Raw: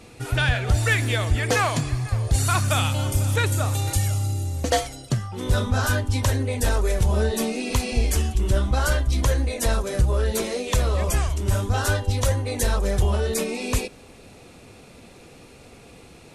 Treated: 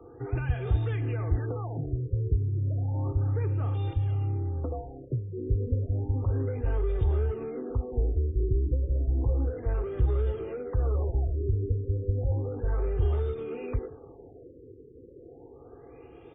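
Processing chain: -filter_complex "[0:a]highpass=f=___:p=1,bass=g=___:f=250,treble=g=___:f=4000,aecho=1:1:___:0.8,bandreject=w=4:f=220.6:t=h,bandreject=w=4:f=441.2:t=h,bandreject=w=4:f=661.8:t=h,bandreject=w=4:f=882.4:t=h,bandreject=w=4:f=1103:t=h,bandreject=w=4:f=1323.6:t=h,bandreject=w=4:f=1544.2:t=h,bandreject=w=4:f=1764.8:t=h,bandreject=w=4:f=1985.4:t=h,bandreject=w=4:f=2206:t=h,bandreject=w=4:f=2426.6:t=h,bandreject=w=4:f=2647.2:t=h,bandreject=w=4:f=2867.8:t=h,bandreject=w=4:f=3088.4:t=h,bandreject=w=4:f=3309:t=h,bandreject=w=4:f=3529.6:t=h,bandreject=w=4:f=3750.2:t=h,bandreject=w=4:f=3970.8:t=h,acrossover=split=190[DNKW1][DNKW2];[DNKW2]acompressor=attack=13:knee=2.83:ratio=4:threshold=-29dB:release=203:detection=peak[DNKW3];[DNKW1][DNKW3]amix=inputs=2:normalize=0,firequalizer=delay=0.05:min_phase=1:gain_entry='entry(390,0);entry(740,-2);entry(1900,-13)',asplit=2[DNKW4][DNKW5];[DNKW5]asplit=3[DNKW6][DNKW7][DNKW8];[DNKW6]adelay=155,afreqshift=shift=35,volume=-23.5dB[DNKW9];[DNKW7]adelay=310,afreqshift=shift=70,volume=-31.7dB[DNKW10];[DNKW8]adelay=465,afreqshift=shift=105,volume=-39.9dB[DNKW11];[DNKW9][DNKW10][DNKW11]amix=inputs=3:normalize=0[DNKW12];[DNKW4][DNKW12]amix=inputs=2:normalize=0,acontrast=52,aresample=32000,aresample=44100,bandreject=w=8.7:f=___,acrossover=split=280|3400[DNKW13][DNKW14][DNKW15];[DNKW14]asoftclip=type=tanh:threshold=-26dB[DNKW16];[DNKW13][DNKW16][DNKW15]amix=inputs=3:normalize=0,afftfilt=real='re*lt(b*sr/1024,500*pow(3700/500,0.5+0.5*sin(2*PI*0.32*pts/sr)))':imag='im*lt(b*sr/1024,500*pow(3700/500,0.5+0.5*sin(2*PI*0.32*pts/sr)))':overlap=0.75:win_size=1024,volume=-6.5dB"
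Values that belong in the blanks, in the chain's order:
73, -4, 7, 2.5, 770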